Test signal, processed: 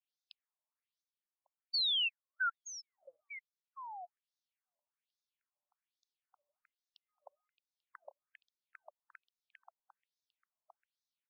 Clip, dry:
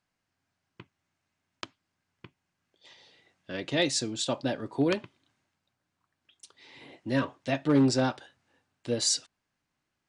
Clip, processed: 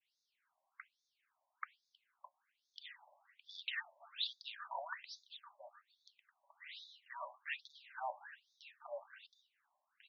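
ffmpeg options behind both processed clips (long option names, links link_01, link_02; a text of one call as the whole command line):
ffmpeg -i in.wav -af "adynamicequalizer=threshold=0.00447:dfrequency=1600:dqfactor=1.2:tfrequency=1600:tqfactor=1.2:attack=5:release=100:ratio=0.375:range=1.5:mode=boostabove:tftype=bell,acompressor=threshold=-36dB:ratio=5,aecho=1:1:1150:0.2,afftfilt=real='re*between(b*sr/1024,760*pow(4900/760,0.5+0.5*sin(2*PI*1.2*pts/sr))/1.41,760*pow(4900/760,0.5+0.5*sin(2*PI*1.2*pts/sr))*1.41)':imag='im*between(b*sr/1024,760*pow(4900/760,0.5+0.5*sin(2*PI*1.2*pts/sr))/1.41,760*pow(4900/760,0.5+0.5*sin(2*PI*1.2*pts/sr))*1.41)':win_size=1024:overlap=0.75,volume=4.5dB" out.wav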